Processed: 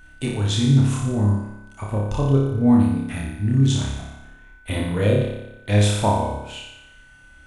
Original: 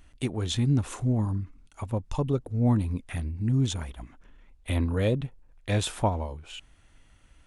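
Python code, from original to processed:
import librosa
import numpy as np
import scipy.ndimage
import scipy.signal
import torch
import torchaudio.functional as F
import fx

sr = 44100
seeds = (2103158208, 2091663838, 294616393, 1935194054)

y = fx.room_flutter(x, sr, wall_m=5.0, rt60_s=0.89)
y = y + 10.0 ** (-51.0 / 20.0) * np.sin(2.0 * np.pi * 1500.0 * np.arange(len(y)) / sr)
y = y * librosa.db_to_amplitude(2.5)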